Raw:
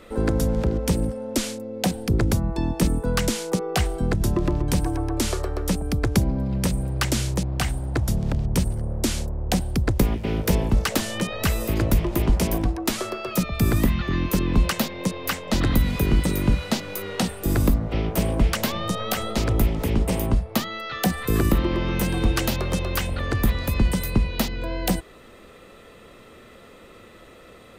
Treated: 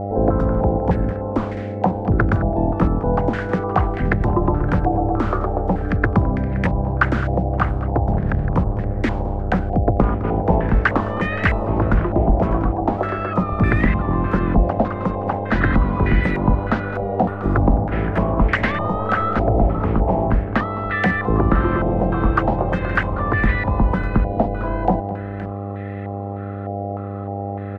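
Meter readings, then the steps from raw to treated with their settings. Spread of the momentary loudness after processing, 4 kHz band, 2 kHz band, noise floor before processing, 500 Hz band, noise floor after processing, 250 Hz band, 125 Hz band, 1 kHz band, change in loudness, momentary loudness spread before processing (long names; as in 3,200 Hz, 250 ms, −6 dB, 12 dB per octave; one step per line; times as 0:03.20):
6 LU, −10.5 dB, +7.5 dB, −47 dBFS, +6.5 dB, −28 dBFS, +4.0 dB, +4.0 dB, +10.5 dB, +4.0 dB, 5 LU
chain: multi-tap delay 212/521 ms −15/−17 dB
hum with harmonics 100 Hz, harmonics 8, −31 dBFS −5 dB per octave
low-pass on a step sequencer 3.3 Hz 720–1,900 Hz
level +2.5 dB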